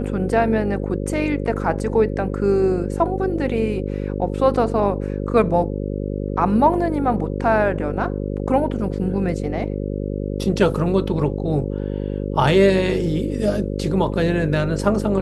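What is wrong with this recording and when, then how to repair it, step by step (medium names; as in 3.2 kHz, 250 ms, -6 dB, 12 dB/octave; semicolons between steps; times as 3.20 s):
buzz 50 Hz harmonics 11 -25 dBFS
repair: de-hum 50 Hz, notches 11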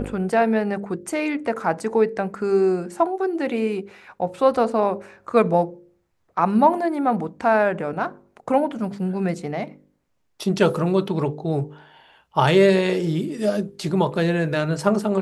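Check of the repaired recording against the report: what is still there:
nothing left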